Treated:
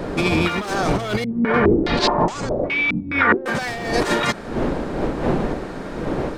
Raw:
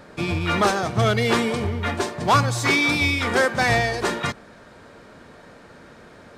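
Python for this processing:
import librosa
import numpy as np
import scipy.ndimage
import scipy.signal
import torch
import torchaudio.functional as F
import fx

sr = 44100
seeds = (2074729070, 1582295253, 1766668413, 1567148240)

y = fx.dmg_wind(x, sr, seeds[0], corner_hz=400.0, level_db=-28.0)
y = fx.peak_eq(y, sr, hz=93.0, db=-10.5, octaves=0.95)
y = np.clip(y, -10.0 ** (-17.0 / 20.0), 10.0 ** (-17.0 / 20.0))
y = fx.over_compress(y, sr, threshold_db=-26.0, ratio=-0.5)
y = fx.filter_held_lowpass(y, sr, hz=4.8, low_hz=210.0, high_hz=7300.0, at=(1.24, 3.46))
y = y * 10.0 ** (6.0 / 20.0)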